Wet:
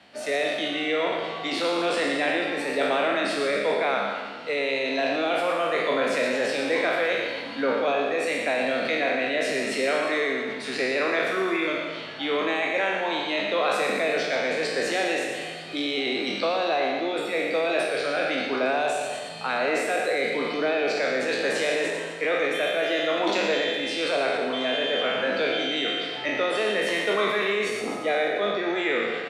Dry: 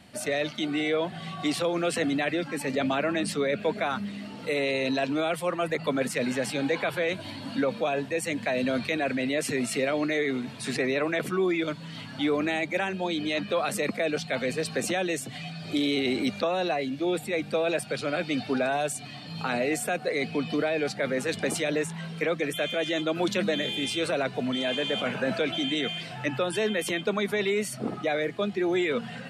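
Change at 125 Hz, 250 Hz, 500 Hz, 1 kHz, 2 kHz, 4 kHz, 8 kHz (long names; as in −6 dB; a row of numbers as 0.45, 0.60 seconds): −9.5, −2.0, +3.5, +5.5, +5.5, +4.0, −2.5 decibels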